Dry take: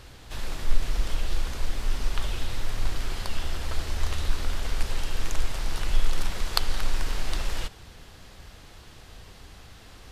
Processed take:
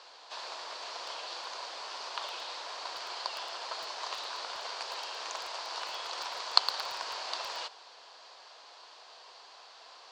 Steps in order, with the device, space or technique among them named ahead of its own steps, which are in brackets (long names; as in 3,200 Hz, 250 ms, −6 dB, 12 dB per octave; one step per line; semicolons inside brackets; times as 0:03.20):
phone speaker on a table (loudspeaker in its box 500–6,700 Hz, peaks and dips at 680 Hz +4 dB, 1,000 Hz +9 dB, 2,000 Hz −4 dB, 4,500 Hz +8 dB)
feedback echo at a low word length 112 ms, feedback 35%, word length 5 bits, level −10 dB
level −3 dB